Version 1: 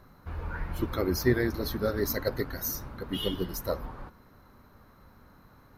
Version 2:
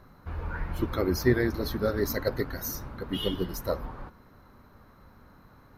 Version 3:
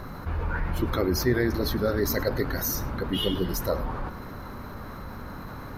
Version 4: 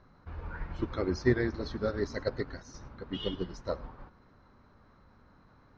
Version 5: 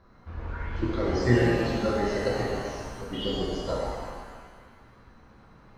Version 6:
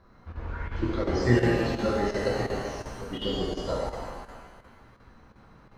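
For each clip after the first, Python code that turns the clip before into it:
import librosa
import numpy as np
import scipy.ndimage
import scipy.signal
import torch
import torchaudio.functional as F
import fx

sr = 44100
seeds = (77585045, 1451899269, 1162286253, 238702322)

y1 = fx.high_shelf(x, sr, hz=5200.0, db=-4.5)
y1 = y1 * 10.0 ** (1.5 / 20.0)
y2 = y1 + 10.0 ** (-23.5 / 20.0) * np.pad(y1, (int(104 * sr / 1000.0), 0))[:len(y1)]
y2 = fx.env_flatten(y2, sr, amount_pct=50)
y2 = y2 * 10.0 ** (-2.0 / 20.0)
y3 = scipy.signal.sosfilt(scipy.signal.butter(6, 6200.0, 'lowpass', fs=sr, output='sos'), y2)
y3 = fx.upward_expand(y3, sr, threshold_db=-34.0, expansion=2.5)
y4 = fx.rev_shimmer(y3, sr, seeds[0], rt60_s=1.6, semitones=7, shimmer_db=-8, drr_db=-4.5)
y5 = fx.chopper(y4, sr, hz=2.8, depth_pct=60, duty_pct=90)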